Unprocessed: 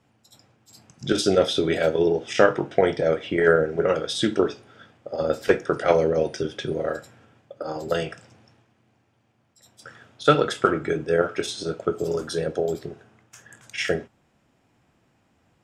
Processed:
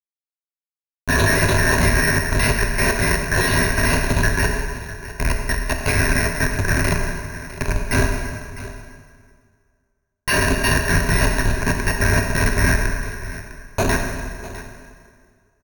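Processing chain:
band-splitting scrambler in four parts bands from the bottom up 2143
0:03.96–0:06.18: guitar amp tone stack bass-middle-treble 10-0-10
comparator with hysteresis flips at −22 dBFS
single-tap delay 654 ms −15.5 dB
dense smooth reverb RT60 2 s, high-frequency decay 0.8×, DRR 2 dB
bad sample-rate conversion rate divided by 6×, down filtered, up hold
EQ curve with evenly spaced ripples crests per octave 1.5, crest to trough 13 dB
level +7.5 dB

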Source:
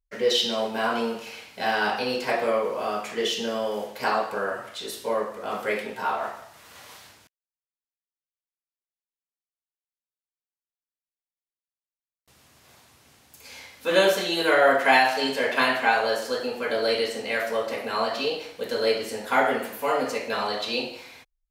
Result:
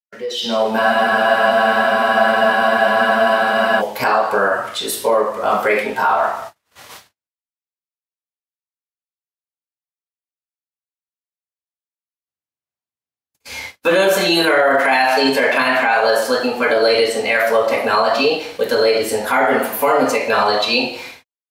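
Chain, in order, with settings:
noise gate −45 dBFS, range −56 dB
in parallel at −1 dB: downward compressor, threshold −35 dBFS, peak gain reduction 19.5 dB
on the sum: noise reduction from a noise print of the clip's start 6 dB
brickwall limiter −18 dBFS, peak gain reduction 12.5 dB
automatic gain control gain up to 15 dB
frozen spectrum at 0:00.81, 2.99 s
level −2 dB

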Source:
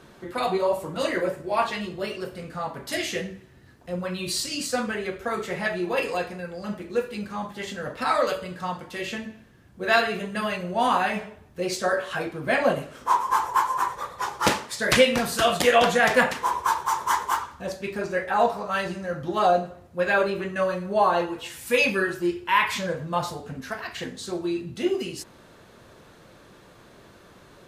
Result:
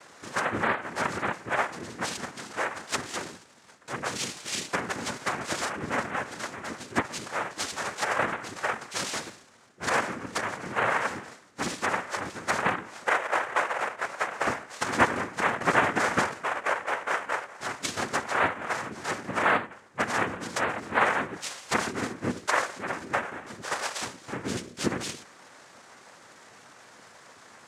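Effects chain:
elliptic low-pass filter 2,700 Hz
tilt shelving filter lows −9.5 dB, about 690 Hz
treble cut that deepens with the level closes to 680 Hz, closed at −21.5 dBFS
cochlear-implant simulation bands 3
on a send: convolution reverb, pre-delay 3 ms, DRR 22.5 dB

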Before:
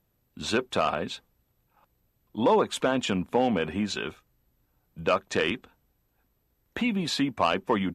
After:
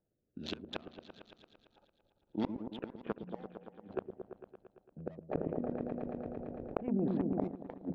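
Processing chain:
adaptive Wiener filter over 41 samples
high-shelf EQ 5,100 Hz −11 dB
mains-hum notches 60/120/180/240 Hz
output level in coarse steps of 12 dB
low-pass filter sweep 5,500 Hz → 730 Hz, 0:02.60–0:03.25
mid-hump overdrive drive 18 dB, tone 1,800 Hz, clips at −12.5 dBFS
rotating-speaker cabinet horn 1.1 Hz, later 6.3 Hz, at 0:03.67
gate with flip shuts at −24 dBFS, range −36 dB
echo whose low-pass opens from repeat to repeat 113 ms, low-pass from 400 Hz, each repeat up 1 octave, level −6 dB
0:05.31–0:07.48: envelope flattener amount 70%
level +1.5 dB

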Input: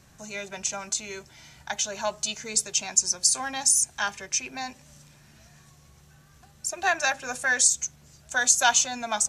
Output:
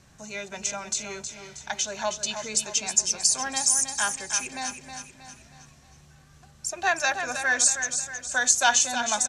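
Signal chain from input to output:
low-pass filter 10,000 Hz 12 dB per octave
on a send: repeating echo 317 ms, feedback 46%, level −8 dB

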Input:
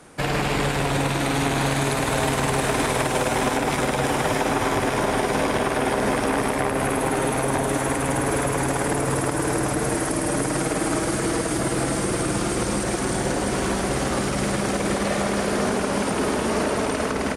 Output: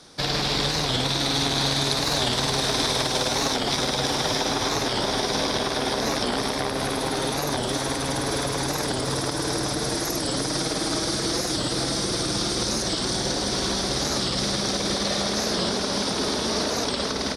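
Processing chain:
flat-topped bell 4,500 Hz +15 dB 1 octave
wow of a warped record 45 rpm, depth 160 cents
level −4 dB

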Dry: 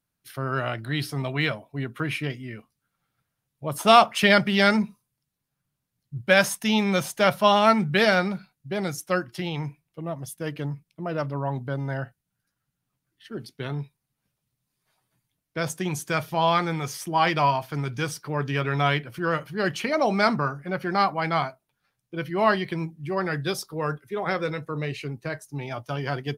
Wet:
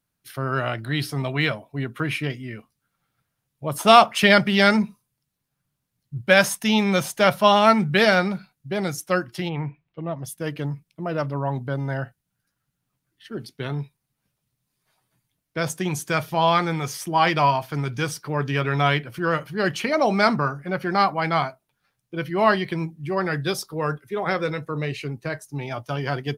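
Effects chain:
0:09.48–0:10.23: low-pass filter 2,200 Hz → 5,300 Hz 24 dB per octave
level +2.5 dB

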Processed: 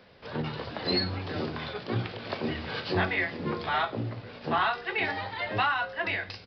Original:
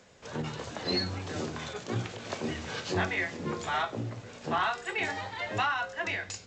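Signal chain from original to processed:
downsampling to 11,025 Hz
level +2.5 dB

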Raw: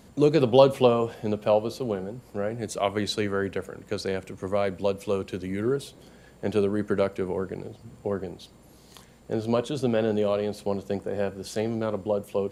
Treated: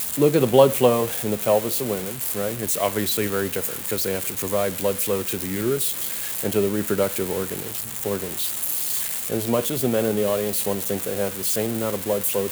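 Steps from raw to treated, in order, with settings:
spike at every zero crossing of −18 dBFS
parametric band 5,300 Hz −7 dB 0.83 octaves
level +2.5 dB

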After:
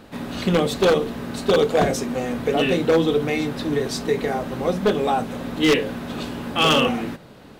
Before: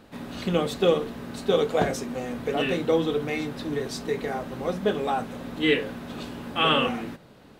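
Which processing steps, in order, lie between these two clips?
dynamic equaliser 1,500 Hz, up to −4 dB, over −35 dBFS, Q 1
wave folding −16.5 dBFS
level +6.5 dB

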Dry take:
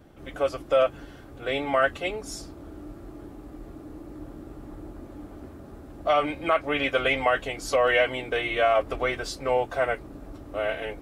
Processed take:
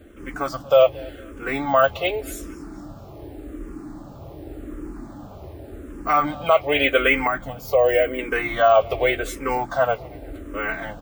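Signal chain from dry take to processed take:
bad sample-rate conversion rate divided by 2×, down none, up hold
0:07.27–0:08.19: parametric band 3,800 Hz −14 dB 2.8 octaves
repeating echo 229 ms, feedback 45%, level −23.5 dB
frequency shifter mixed with the dry sound −0.87 Hz
level +8 dB

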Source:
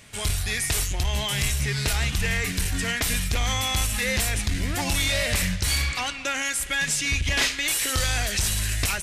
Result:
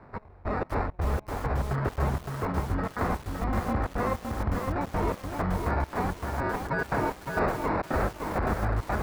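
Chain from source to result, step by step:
high-pass filter 46 Hz 12 dB per octave
decimation without filtering 14×
low-pass filter 1,300 Hz 12 dB per octave
brickwall limiter −18.5 dBFS, peak gain reduction 6 dB
convolution reverb RT60 0.75 s, pre-delay 98 ms, DRR 16 dB
gate pattern "xx...xx.xx." 167 BPM −24 dB
feedback echo at a low word length 563 ms, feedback 35%, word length 7 bits, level −4 dB

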